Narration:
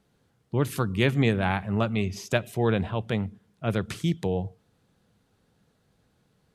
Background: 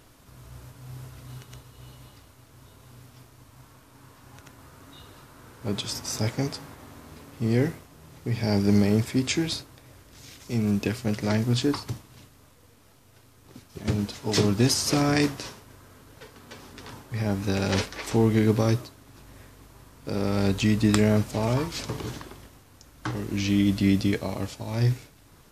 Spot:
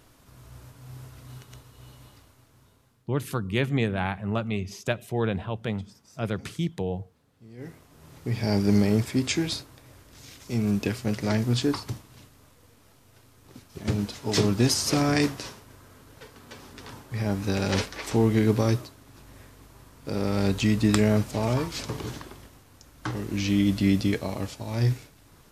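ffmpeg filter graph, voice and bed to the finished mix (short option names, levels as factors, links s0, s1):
-filter_complex "[0:a]adelay=2550,volume=0.75[s0];[1:a]volume=11.9,afade=t=out:st=2.12:d=0.95:silence=0.0794328,afade=t=in:st=7.57:d=0.52:silence=0.0668344[s1];[s0][s1]amix=inputs=2:normalize=0"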